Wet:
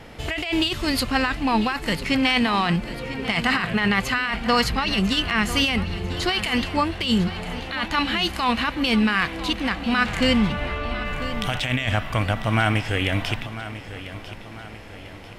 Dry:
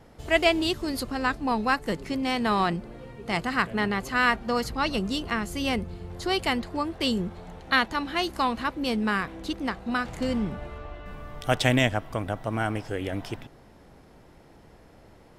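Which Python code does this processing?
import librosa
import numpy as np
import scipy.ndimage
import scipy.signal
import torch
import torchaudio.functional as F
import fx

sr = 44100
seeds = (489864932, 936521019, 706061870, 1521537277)

p1 = fx.dynamic_eq(x, sr, hz=380.0, q=1.0, threshold_db=-41.0, ratio=4.0, max_db=-7)
p2 = np.clip(10.0 ** (24.5 / 20.0) * p1, -1.0, 1.0) / 10.0 ** (24.5 / 20.0)
p3 = p1 + F.gain(torch.from_numpy(p2), -11.0).numpy()
p4 = fx.peak_eq(p3, sr, hz=2600.0, db=10.0, octaves=1.3)
p5 = fx.over_compress(p4, sr, threshold_db=-25.0, ratio=-1.0)
p6 = fx.hpss(p5, sr, part='harmonic', gain_db=6)
y = p6 + fx.echo_feedback(p6, sr, ms=996, feedback_pct=45, wet_db=-13.5, dry=0)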